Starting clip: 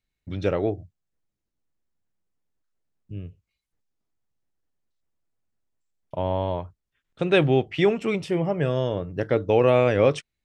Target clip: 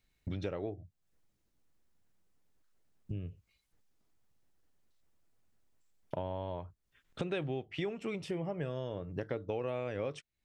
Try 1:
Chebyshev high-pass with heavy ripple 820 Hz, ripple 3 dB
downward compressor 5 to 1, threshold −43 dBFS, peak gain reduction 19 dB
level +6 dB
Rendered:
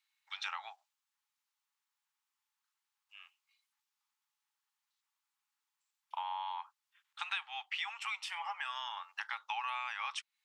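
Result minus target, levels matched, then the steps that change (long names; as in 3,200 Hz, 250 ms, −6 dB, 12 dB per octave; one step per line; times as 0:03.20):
1,000 Hz band +8.0 dB
remove: Chebyshev high-pass with heavy ripple 820 Hz, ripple 3 dB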